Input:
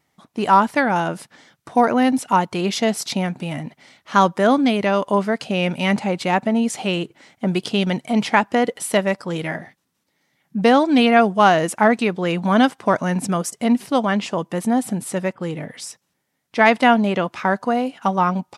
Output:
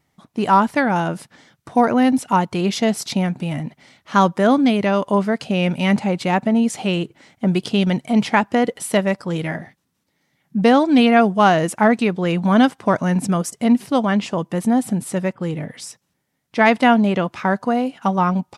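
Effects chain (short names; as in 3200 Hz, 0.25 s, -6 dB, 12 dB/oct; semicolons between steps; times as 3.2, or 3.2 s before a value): low shelf 190 Hz +8.5 dB; gain -1 dB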